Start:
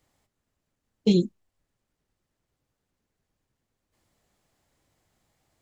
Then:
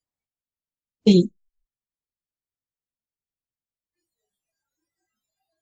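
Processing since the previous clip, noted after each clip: spectral noise reduction 29 dB; trim +5.5 dB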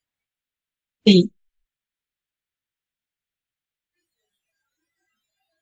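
high-order bell 2.3 kHz +8.5 dB; trim +1.5 dB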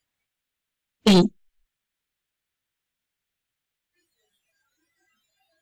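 saturation -17 dBFS, distortion -8 dB; trim +5.5 dB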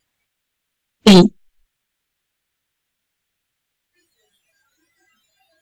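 vibrato 0.86 Hz 10 cents; trim +8 dB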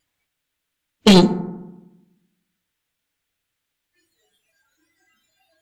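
reverberation RT60 1.0 s, pre-delay 3 ms, DRR 9.5 dB; trim -2.5 dB

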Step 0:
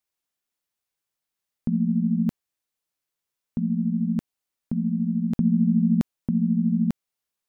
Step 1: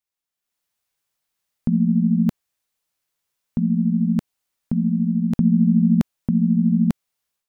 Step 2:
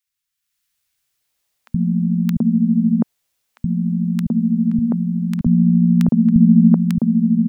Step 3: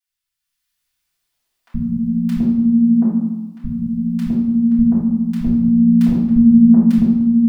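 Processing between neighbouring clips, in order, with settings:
peaking EQ 320 Hz -3.5 dB 1.1 oct; level rider gain up to 10.5 dB; trim -4 dB
three bands offset in time highs, lows, mids 70/730 ms, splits 190/1200 Hz; trim +7 dB
reverberation RT60 1.2 s, pre-delay 3 ms, DRR -11 dB; trim -11 dB

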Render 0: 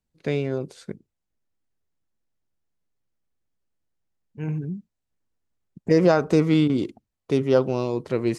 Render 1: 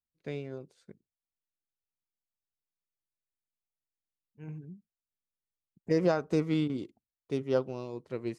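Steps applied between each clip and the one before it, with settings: upward expansion 1.5:1, over -37 dBFS; trim -8 dB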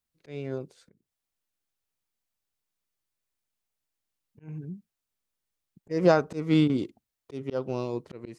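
slow attack 238 ms; trim +8 dB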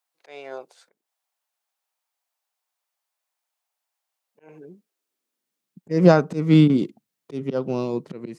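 high-pass sweep 760 Hz -> 170 Hz, 4.12–5.88 s; trim +4 dB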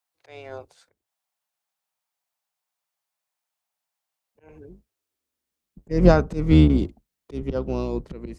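octave divider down 2 oct, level -1 dB; trim -2 dB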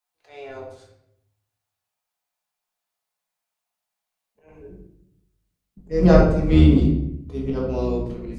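simulated room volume 180 m³, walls mixed, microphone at 1.4 m; trim -3.5 dB

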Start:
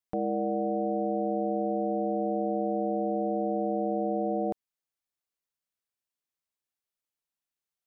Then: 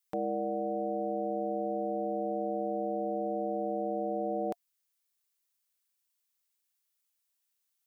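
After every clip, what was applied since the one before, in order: tilt EQ +3 dB/octave; band-stop 700 Hz, Q 12; gain riding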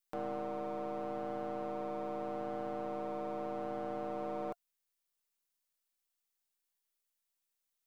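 partial rectifier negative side -12 dB; bass shelf 130 Hz -10 dB; trim -2 dB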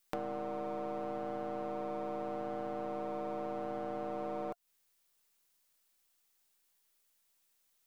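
compression 6:1, threshold -46 dBFS, peak gain reduction 11.5 dB; trim +10.5 dB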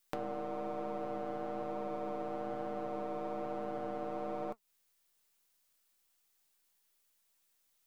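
flange 1.1 Hz, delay 4.2 ms, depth 9.3 ms, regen +71%; trim +4 dB

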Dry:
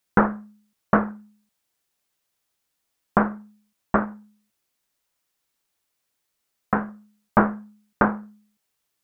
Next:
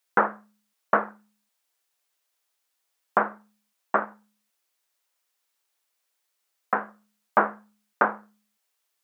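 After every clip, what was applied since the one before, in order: high-pass 480 Hz 12 dB/octave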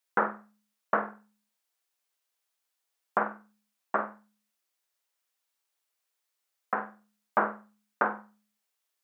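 flutter echo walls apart 8.1 m, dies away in 0.29 s; trim -5.5 dB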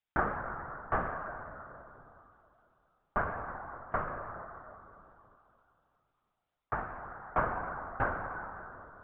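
reverberation RT60 3.0 s, pre-delay 53 ms, DRR 4 dB; LPC vocoder at 8 kHz whisper; trim -4 dB

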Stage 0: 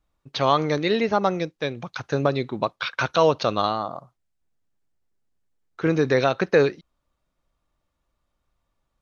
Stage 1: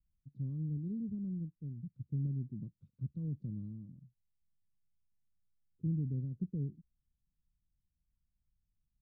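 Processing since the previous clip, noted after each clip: inverse Chebyshev low-pass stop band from 680 Hz, stop band 60 dB; trim -5.5 dB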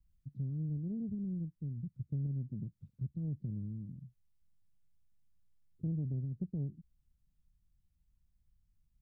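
self-modulated delay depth 0.34 ms; bass shelf 240 Hz +8.5 dB; compression 2:1, threshold -41 dBFS, peak gain reduction 9 dB; trim +1 dB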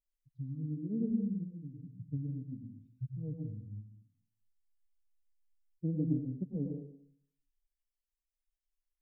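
expander on every frequency bin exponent 3; small resonant body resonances 290/460 Hz, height 16 dB; on a send at -1 dB: reverberation RT60 0.65 s, pre-delay 83 ms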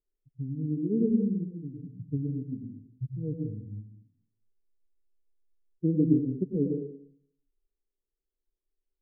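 resonant low-pass 400 Hz, resonance Q 4.9; trim +4 dB

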